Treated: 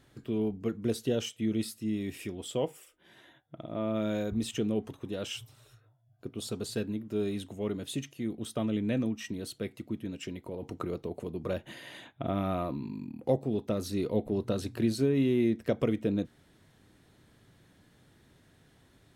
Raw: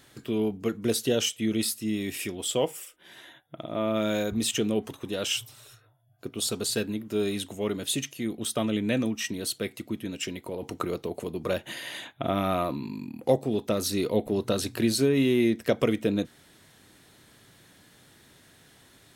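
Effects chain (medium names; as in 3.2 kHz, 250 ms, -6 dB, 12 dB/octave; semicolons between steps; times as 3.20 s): tilt EQ -2 dB/octave; trim -7 dB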